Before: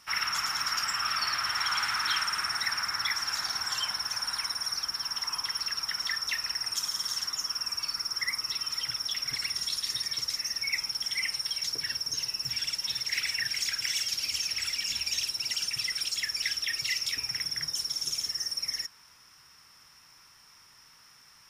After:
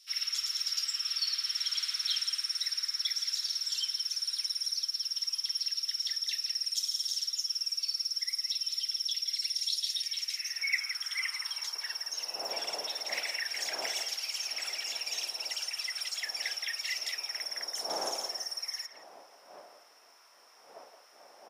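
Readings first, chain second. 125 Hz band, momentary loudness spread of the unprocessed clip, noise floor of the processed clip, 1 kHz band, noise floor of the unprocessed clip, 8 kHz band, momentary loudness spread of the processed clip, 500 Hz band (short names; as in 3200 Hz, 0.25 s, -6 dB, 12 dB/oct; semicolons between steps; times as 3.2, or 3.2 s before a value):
under -20 dB, 3 LU, -58 dBFS, -9.5 dB, -57 dBFS, -3.0 dB, 5 LU, +8.5 dB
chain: wind noise 450 Hz -44 dBFS; HPF 100 Hz; speakerphone echo 0.17 s, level -8 dB; high-pass sweep 3900 Hz -> 690 Hz, 9.74–12.05; gain -5 dB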